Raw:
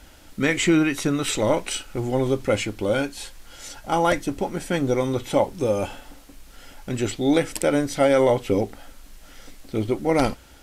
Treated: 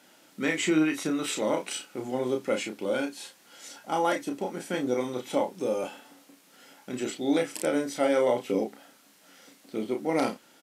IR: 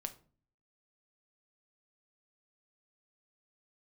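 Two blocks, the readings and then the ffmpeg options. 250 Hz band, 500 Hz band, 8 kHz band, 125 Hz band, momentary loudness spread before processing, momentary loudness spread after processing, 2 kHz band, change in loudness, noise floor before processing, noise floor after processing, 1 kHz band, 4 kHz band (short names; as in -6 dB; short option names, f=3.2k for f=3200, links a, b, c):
-5.5 dB, -6.0 dB, -6.0 dB, -14.5 dB, 13 LU, 11 LU, -5.5 dB, -6.0 dB, -48 dBFS, -59 dBFS, -5.5 dB, -6.0 dB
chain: -filter_complex "[0:a]highpass=f=180:w=0.5412,highpass=f=180:w=1.3066,asplit=2[a][b];[b]adelay=32,volume=-5dB[c];[a][c]amix=inputs=2:normalize=0,volume=-7dB"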